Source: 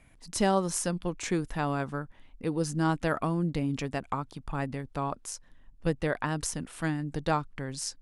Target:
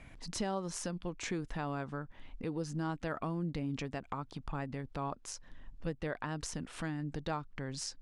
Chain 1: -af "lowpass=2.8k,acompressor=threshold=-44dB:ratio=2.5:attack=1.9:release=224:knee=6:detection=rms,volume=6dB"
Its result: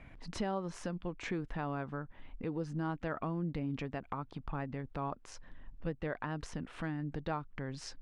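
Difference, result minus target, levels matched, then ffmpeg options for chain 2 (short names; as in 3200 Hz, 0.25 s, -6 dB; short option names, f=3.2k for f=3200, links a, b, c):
8000 Hz band -10.0 dB
-af "lowpass=6.2k,acompressor=threshold=-44dB:ratio=2.5:attack=1.9:release=224:knee=6:detection=rms,volume=6dB"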